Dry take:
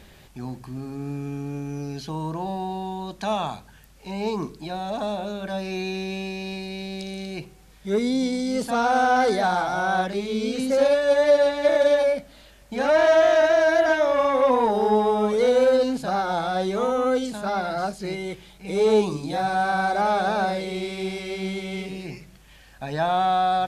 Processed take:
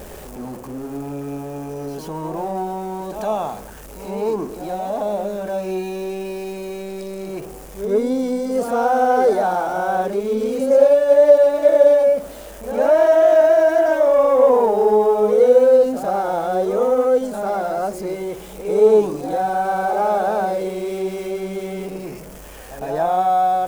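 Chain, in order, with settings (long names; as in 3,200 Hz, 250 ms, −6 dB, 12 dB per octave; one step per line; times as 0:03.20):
converter with a step at zero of −31 dBFS
octave-band graphic EQ 125/500/2,000/4,000 Hz −8/+8/−5/−10 dB
backwards echo 107 ms −9 dB
level −1 dB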